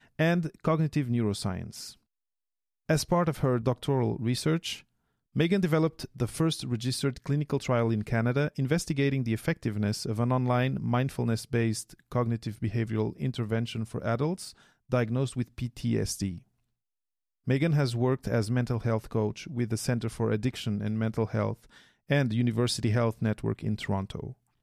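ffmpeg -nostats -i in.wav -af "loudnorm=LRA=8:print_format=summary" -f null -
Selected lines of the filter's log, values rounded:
Input Integrated:    -29.2 LUFS
Input True Peak:     -10.4 dBTP
Input LRA:             2.8 LU
Input Threshold:     -39.6 LUFS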